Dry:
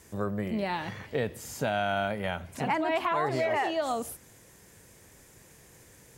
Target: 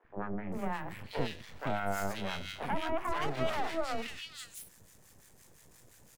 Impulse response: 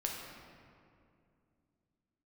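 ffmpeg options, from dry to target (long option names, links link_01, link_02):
-filter_complex "[0:a]aeval=exprs='max(val(0),0)':channel_layout=same,acrossover=split=430|2100[link_01][link_02][link_03];[link_01]adelay=40[link_04];[link_03]adelay=520[link_05];[link_04][link_02][link_05]amix=inputs=3:normalize=0,acrossover=split=1000[link_06][link_07];[link_06]aeval=exprs='val(0)*(1-0.7/2+0.7/2*cos(2*PI*5.8*n/s))':channel_layout=same[link_08];[link_07]aeval=exprs='val(0)*(1-0.7/2-0.7/2*cos(2*PI*5.8*n/s))':channel_layout=same[link_09];[link_08][link_09]amix=inputs=2:normalize=0,volume=3dB"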